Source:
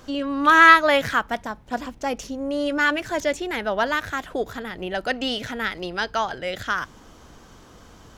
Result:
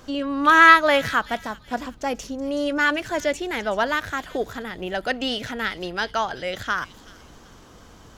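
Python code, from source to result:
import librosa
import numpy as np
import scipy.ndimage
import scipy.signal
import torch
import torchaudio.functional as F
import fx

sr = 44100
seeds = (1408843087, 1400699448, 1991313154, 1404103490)

y = fx.echo_wet_highpass(x, sr, ms=376, feedback_pct=33, hz=3500.0, wet_db=-11.5)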